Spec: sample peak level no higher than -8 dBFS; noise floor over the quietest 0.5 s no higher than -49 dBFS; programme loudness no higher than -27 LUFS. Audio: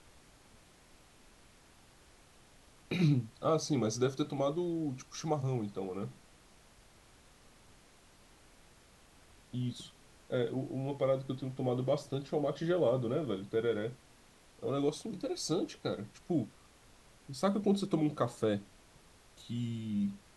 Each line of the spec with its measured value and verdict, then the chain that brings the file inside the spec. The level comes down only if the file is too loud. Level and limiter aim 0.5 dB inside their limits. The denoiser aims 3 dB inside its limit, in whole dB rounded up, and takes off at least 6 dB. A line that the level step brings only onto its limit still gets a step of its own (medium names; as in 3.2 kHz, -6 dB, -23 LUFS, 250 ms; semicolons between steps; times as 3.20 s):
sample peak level -17.5 dBFS: pass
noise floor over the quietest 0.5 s -61 dBFS: pass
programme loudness -35.0 LUFS: pass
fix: none needed